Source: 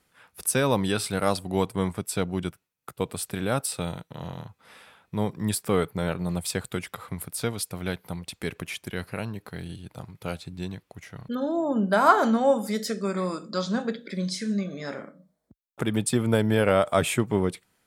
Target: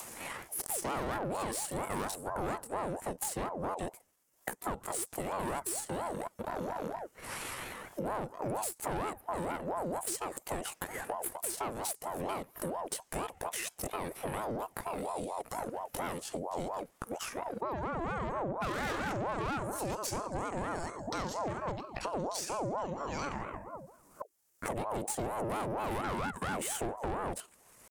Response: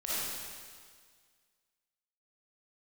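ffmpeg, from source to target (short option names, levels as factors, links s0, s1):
-af "adynamicequalizer=threshold=0.0158:dfrequency=760:dqfactor=2.4:tfrequency=760:tqfactor=2.4:attack=5:release=100:ratio=0.375:range=2:mode=boostabove:tftype=bell,aexciter=amount=9.1:drive=5.3:freq=5800,aemphasis=mode=reproduction:type=75fm,aeval=exprs='(tanh(22.4*val(0)+0.6)-tanh(0.6))/22.4':c=same,acompressor=mode=upward:threshold=0.0178:ratio=2.5,atempo=0.64,acompressor=threshold=0.0112:ratio=5,aeval=exprs='val(0)*sin(2*PI*600*n/s+600*0.45/4.3*sin(2*PI*4.3*n/s))':c=same,volume=2.51"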